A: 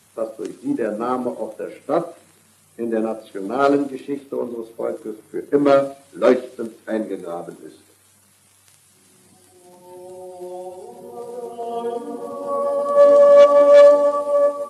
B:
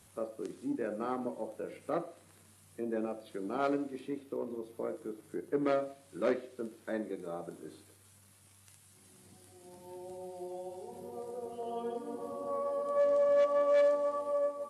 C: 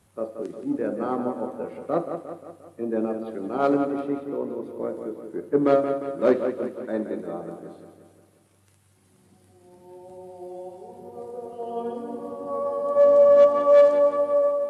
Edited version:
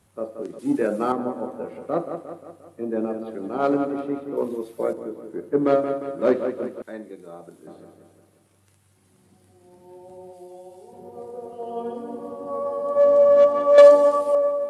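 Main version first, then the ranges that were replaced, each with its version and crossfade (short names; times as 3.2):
C
0.59–1.12 from A
4.37–4.93 from A
6.82–7.67 from B
10.33–10.93 from B
13.78–14.35 from A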